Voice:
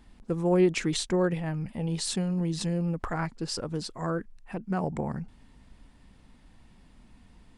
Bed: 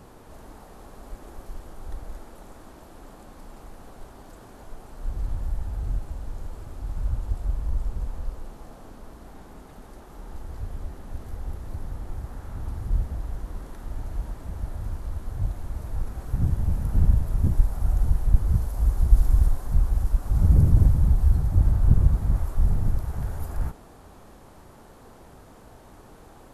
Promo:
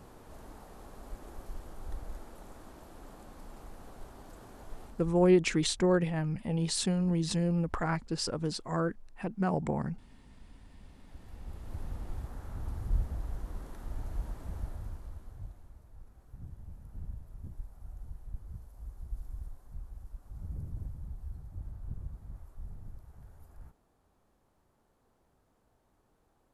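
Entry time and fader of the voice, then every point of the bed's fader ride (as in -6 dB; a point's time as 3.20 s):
4.70 s, -0.5 dB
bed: 4.84 s -4.5 dB
5.40 s -27 dB
10.51 s -27 dB
11.80 s -5.5 dB
14.57 s -5.5 dB
15.87 s -23 dB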